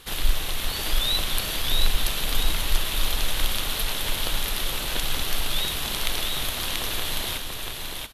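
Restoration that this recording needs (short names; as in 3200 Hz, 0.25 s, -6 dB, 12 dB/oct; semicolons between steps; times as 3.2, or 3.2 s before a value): clip repair -6 dBFS; inverse comb 0.685 s -3.5 dB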